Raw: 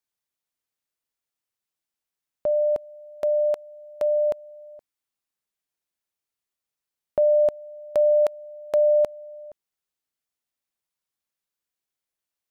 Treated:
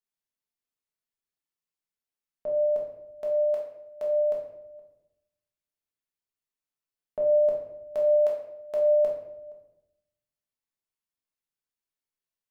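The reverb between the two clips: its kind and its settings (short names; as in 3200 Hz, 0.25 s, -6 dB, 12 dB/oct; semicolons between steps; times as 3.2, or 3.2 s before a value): shoebox room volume 230 m³, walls mixed, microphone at 1.5 m; gain -11 dB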